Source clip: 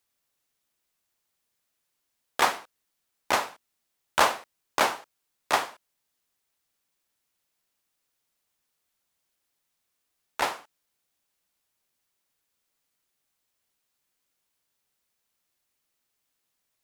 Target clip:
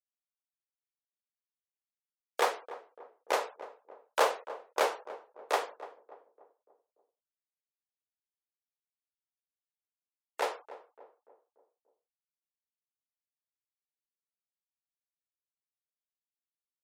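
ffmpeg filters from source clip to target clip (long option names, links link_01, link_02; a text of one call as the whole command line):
ffmpeg -i in.wav -filter_complex "[0:a]afftfilt=real='re*gte(hypot(re,im),0.00501)':imag='im*gte(hypot(re,im),0.00501)':win_size=1024:overlap=0.75,highpass=frequency=460:width_type=q:width=4.9,asplit=2[link_01][link_02];[link_02]adelay=291,lowpass=frequency=960:poles=1,volume=-13.5dB,asplit=2[link_03][link_04];[link_04]adelay=291,lowpass=frequency=960:poles=1,volume=0.53,asplit=2[link_05][link_06];[link_06]adelay=291,lowpass=frequency=960:poles=1,volume=0.53,asplit=2[link_07][link_08];[link_08]adelay=291,lowpass=frequency=960:poles=1,volume=0.53,asplit=2[link_09][link_10];[link_10]adelay=291,lowpass=frequency=960:poles=1,volume=0.53[link_11];[link_01][link_03][link_05][link_07][link_09][link_11]amix=inputs=6:normalize=0,volume=-8.5dB" out.wav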